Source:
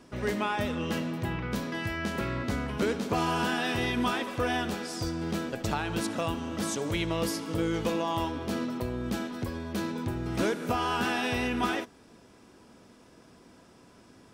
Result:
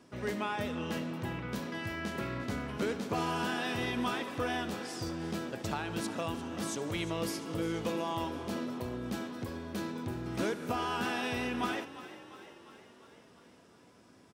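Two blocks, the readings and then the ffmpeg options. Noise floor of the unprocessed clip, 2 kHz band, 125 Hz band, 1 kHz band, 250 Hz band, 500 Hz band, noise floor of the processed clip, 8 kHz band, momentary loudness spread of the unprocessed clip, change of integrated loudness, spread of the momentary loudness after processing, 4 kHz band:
-56 dBFS, -5.0 dB, -5.5 dB, -4.5 dB, -5.0 dB, -4.5 dB, -59 dBFS, -5.0 dB, 5 LU, -5.0 dB, 6 LU, -5.0 dB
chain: -filter_complex "[0:a]highpass=75,asplit=8[s0][s1][s2][s3][s4][s5][s6][s7];[s1]adelay=350,afreqshift=33,volume=0.178[s8];[s2]adelay=700,afreqshift=66,volume=0.11[s9];[s3]adelay=1050,afreqshift=99,volume=0.0684[s10];[s4]adelay=1400,afreqshift=132,volume=0.0422[s11];[s5]adelay=1750,afreqshift=165,volume=0.0263[s12];[s6]adelay=2100,afreqshift=198,volume=0.0162[s13];[s7]adelay=2450,afreqshift=231,volume=0.0101[s14];[s0][s8][s9][s10][s11][s12][s13][s14]amix=inputs=8:normalize=0,volume=0.562"

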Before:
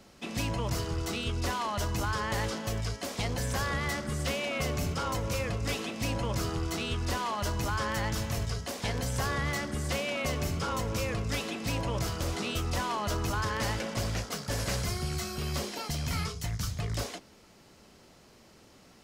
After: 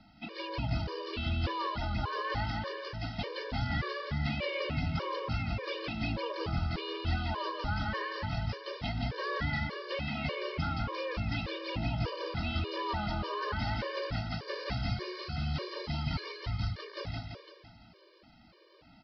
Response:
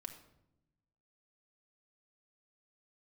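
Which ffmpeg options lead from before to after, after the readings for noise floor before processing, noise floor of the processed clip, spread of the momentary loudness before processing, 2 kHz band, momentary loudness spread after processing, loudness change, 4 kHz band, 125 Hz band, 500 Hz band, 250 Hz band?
-57 dBFS, -59 dBFS, 3 LU, -2.5 dB, 5 LU, -3.0 dB, -3.0 dB, -2.0 dB, -3.0 dB, -2.5 dB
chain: -af "aecho=1:1:170|340|510|680|850|1020|1190:0.631|0.328|0.171|0.0887|0.0461|0.024|0.0125,aresample=11025,aresample=44100,afftfilt=real='re*gt(sin(2*PI*1.7*pts/sr)*(1-2*mod(floor(b*sr/1024/310),2)),0)':imag='im*gt(sin(2*PI*1.7*pts/sr)*(1-2*mod(floor(b*sr/1024/310),2)),0)':win_size=1024:overlap=0.75,volume=0.891"

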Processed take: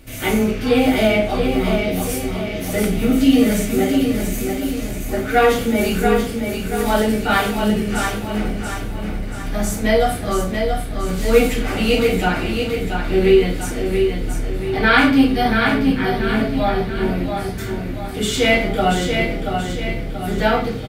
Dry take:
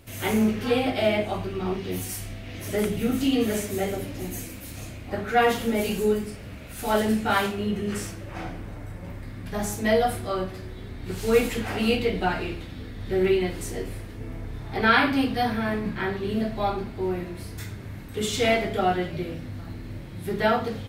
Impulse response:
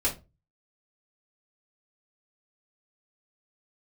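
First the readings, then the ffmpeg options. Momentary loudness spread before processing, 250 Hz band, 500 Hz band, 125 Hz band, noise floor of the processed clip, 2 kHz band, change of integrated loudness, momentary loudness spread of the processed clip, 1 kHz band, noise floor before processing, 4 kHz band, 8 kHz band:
15 LU, +9.0 dB, +7.5 dB, +7.5 dB, -26 dBFS, +7.5 dB, +7.0 dB, 10 LU, +6.0 dB, -39 dBFS, +7.5 dB, +7.5 dB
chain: -filter_complex "[0:a]equalizer=f=950:t=o:w=0.35:g=-5,aecho=1:1:682|1364|2046|2728|3410|4092:0.531|0.25|0.117|0.0551|0.0259|0.0122,asplit=2[s0][s1];[1:a]atrim=start_sample=2205,asetrate=38808,aresample=44100[s2];[s1][s2]afir=irnorm=-1:irlink=0,volume=0.335[s3];[s0][s3]amix=inputs=2:normalize=0,volume=1.33"

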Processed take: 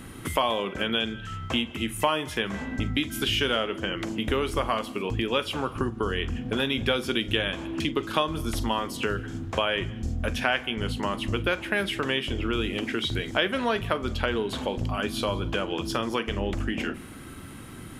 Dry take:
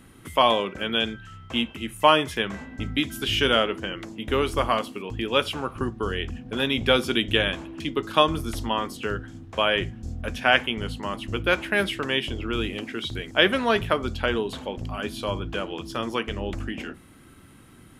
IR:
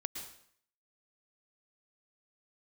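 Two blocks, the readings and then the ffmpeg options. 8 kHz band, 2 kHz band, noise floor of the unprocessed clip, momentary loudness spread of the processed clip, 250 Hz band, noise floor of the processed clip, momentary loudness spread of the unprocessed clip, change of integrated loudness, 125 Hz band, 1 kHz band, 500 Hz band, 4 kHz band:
+1.5 dB, -3.0 dB, -50 dBFS, 5 LU, -0.5 dB, -41 dBFS, 11 LU, -2.5 dB, +1.0 dB, -4.0 dB, -3.0 dB, -3.0 dB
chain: -filter_complex "[0:a]acompressor=threshold=0.0178:ratio=3,asplit=2[s0][s1];[1:a]atrim=start_sample=2205,adelay=45[s2];[s1][s2]afir=irnorm=-1:irlink=0,volume=0.158[s3];[s0][s3]amix=inputs=2:normalize=0,volume=2.66"

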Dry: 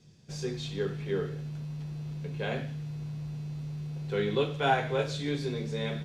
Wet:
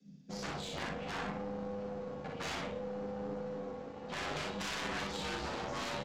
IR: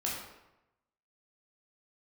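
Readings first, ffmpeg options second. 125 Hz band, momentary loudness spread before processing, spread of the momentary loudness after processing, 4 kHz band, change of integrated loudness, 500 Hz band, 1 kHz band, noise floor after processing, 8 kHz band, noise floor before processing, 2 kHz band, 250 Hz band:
-14.0 dB, 11 LU, 5 LU, -2.5 dB, -7.0 dB, -8.0 dB, -5.5 dB, -49 dBFS, no reading, -44 dBFS, -3.5 dB, -6.5 dB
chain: -filter_complex "[0:a]afftdn=nr=14:nf=-49,acrossover=split=3200[s0][s1];[s1]acompressor=threshold=0.00251:ratio=4:attack=1:release=60[s2];[s0][s2]amix=inputs=2:normalize=0,bandreject=f=940:w=5.6,acrossover=split=600|1800[s3][s4][s5];[s4]alimiter=level_in=2.11:limit=0.0631:level=0:latency=1:release=136,volume=0.473[s6];[s3][s6][s5]amix=inputs=3:normalize=0,acompressor=threshold=0.0251:ratio=4,aresample=16000,aeval=exprs='0.0106*(abs(mod(val(0)/0.0106+3,4)-2)-1)':c=same,aresample=44100,flanger=delay=8.4:depth=1.5:regen=2:speed=0.63:shape=triangular,asoftclip=type=tanh:threshold=0.01,afreqshift=54,aeval=exprs='0.015*(cos(1*acos(clip(val(0)/0.015,-1,1)))-cos(1*PI/2))+0.00119*(cos(2*acos(clip(val(0)/0.015,-1,1)))-cos(2*PI/2))+0.00299*(cos(3*acos(clip(val(0)/0.015,-1,1)))-cos(3*PI/2))+0.000119*(cos(4*acos(clip(val(0)/0.015,-1,1)))-cos(4*PI/2))':c=same,aecho=1:1:40|61:0.562|0.631,volume=4.22"

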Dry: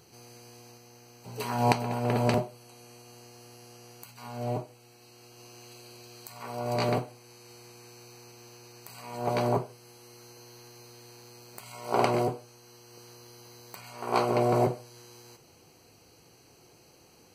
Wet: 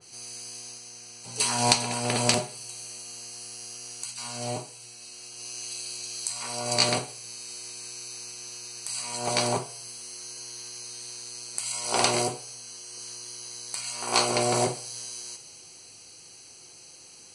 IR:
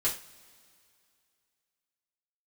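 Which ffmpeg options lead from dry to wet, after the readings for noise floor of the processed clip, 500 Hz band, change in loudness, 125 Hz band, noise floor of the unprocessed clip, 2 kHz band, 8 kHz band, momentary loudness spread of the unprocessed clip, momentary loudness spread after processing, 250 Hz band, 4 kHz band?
-49 dBFS, -1.5 dB, 0.0 dB, -3.5 dB, -58 dBFS, +6.0 dB, +19.0 dB, 23 LU, 19 LU, -2.0 dB, +14.5 dB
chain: -filter_complex "[0:a]volume=6.31,asoftclip=hard,volume=0.158,aresample=22050,aresample=44100,crystalizer=i=8:c=0,bandreject=f=139.8:t=h:w=4,bandreject=f=279.6:t=h:w=4,bandreject=f=419.4:t=h:w=4,bandreject=f=559.2:t=h:w=4,bandreject=f=699:t=h:w=4,bandreject=f=838.8:t=h:w=4,bandreject=f=978.6:t=h:w=4,bandreject=f=1118.4:t=h:w=4,bandreject=f=1258.2:t=h:w=4,bandreject=f=1398:t=h:w=4,bandreject=f=1537.8:t=h:w=4,bandreject=f=1677.6:t=h:w=4,bandreject=f=1817.4:t=h:w=4,bandreject=f=1957.2:t=h:w=4,bandreject=f=2097:t=h:w=4,bandreject=f=2236.8:t=h:w=4,bandreject=f=2376.6:t=h:w=4,bandreject=f=2516.4:t=h:w=4,bandreject=f=2656.2:t=h:w=4,bandreject=f=2796:t=h:w=4,bandreject=f=2935.8:t=h:w=4,bandreject=f=3075.6:t=h:w=4,bandreject=f=3215.4:t=h:w=4,bandreject=f=3355.2:t=h:w=4,bandreject=f=3495:t=h:w=4,bandreject=f=3634.8:t=h:w=4,bandreject=f=3774.6:t=h:w=4,bandreject=f=3914.4:t=h:w=4,bandreject=f=4054.2:t=h:w=4,asplit=2[s0][s1];[1:a]atrim=start_sample=2205,asetrate=35280,aresample=44100[s2];[s1][s2]afir=irnorm=-1:irlink=0,volume=0.1[s3];[s0][s3]amix=inputs=2:normalize=0,adynamicequalizer=threshold=0.00794:dfrequency=2700:dqfactor=0.7:tfrequency=2700:tqfactor=0.7:attack=5:release=100:ratio=0.375:range=2.5:mode=boostabove:tftype=highshelf,volume=0.631"

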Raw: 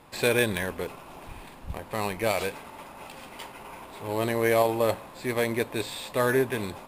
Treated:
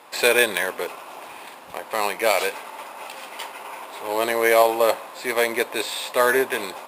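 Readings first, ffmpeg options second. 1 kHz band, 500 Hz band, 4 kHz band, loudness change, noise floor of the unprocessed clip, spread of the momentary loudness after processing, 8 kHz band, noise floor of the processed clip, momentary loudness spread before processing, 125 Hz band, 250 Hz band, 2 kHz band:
+7.5 dB, +5.0 dB, +8.0 dB, +6.0 dB, -47 dBFS, 19 LU, +8.0 dB, -42 dBFS, 20 LU, under -15 dB, -1.5 dB, +8.0 dB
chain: -af "highpass=490,volume=2.51"

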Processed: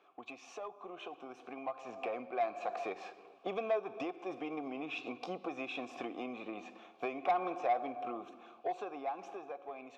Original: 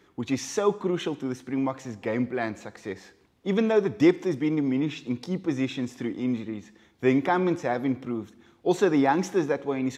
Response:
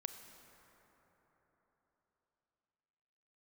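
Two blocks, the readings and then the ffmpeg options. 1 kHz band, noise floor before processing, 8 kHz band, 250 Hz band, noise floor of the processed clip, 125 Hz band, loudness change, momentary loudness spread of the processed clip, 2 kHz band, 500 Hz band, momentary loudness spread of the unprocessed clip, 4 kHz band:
-5.5 dB, -61 dBFS, no reading, -20.0 dB, -60 dBFS, -28.0 dB, -13.5 dB, 14 LU, -11.5 dB, -12.5 dB, 13 LU, -12.0 dB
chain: -filter_complex "[0:a]highpass=f=330:p=1,asplit=2[s0][s1];[1:a]atrim=start_sample=2205,afade=t=out:st=0.4:d=0.01,atrim=end_sample=18081,asetrate=33957,aresample=44100[s2];[s1][s2]afir=irnorm=-1:irlink=0,volume=0.422[s3];[s0][s3]amix=inputs=2:normalize=0,acompressor=threshold=0.02:ratio=12,asplit=3[s4][s5][s6];[s4]bandpass=f=730:t=q:w=8,volume=1[s7];[s5]bandpass=f=1090:t=q:w=8,volume=0.501[s8];[s6]bandpass=f=2440:t=q:w=8,volume=0.355[s9];[s7][s8][s9]amix=inputs=3:normalize=0,asoftclip=type=tanh:threshold=0.0106,dynaudnorm=f=560:g=7:m=2.99,volume=2.11"

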